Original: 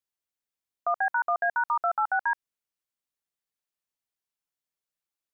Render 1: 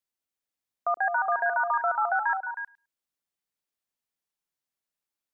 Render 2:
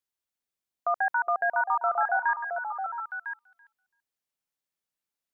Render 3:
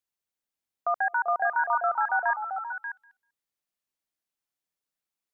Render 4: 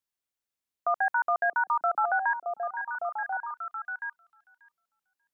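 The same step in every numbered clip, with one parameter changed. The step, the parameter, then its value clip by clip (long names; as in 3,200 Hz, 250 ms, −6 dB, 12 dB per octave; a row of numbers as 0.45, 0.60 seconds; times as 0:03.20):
echo through a band-pass that steps, delay time: 105, 334, 195, 588 milliseconds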